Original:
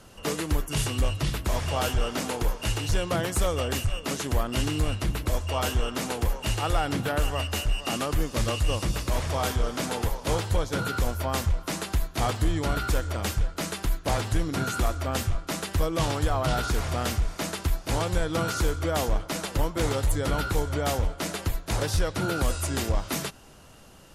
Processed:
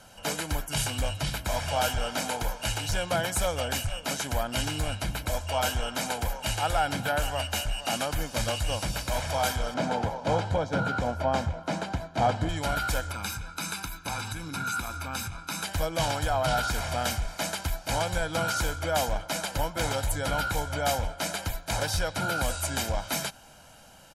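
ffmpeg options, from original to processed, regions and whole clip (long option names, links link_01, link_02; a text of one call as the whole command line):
ffmpeg -i in.wav -filter_complex "[0:a]asettb=1/sr,asplit=3[link_01][link_02][link_03];[link_01]atrim=end=9.744[link_04];[link_02]atrim=start=9.74:end=12.49,asetpts=PTS-STARTPTS,afade=type=in:duration=0.004:curve=qsin,afade=type=out:start_time=2.746:duration=0.004:curve=qsin,highpass=110,lowpass=6200,tiltshelf=frequency=1200:gain=7[link_05];[link_03]atrim=start=12.486[link_06];[link_04][link_05]acrossfade=duration=0.004:curve1=hsin:curve2=qsin[link_07];[link_07][link_06]acrossfade=duration=0.004:curve1=qsin:curve2=hsin,asettb=1/sr,asplit=3[link_08][link_09][link_10];[link_08]atrim=end=13.114[link_11];[link_09]atrim=start=13.11:end=15.64,asetpts=PTS-STARTPTS,afade=type=in:duration=0.004:curve=qsin,afade=type=out:start_time=2.526:duration=0.004:curve=qsin,highpass=frequency=120:poles=1,aecho=1:1:0.8:0.74,atrim=end_sample=111573,acompressor=threshold=-29dB:ratio=3:attack=3.2:release=140:knee=1:detection=peak[link_12];[link_10]atrim=start=15.636[link_13];[link_11][link_12]acrossfade=duration=0.004:curve1=hsin:curve2=qsin[link_14];[link_14][link_13]acrossfade=duration=0.004:curve1=qsin:curve2=hsin,lowshelf=frequency=190:gain=-10.5,aecho=1:1:1.3:0.64" out.wav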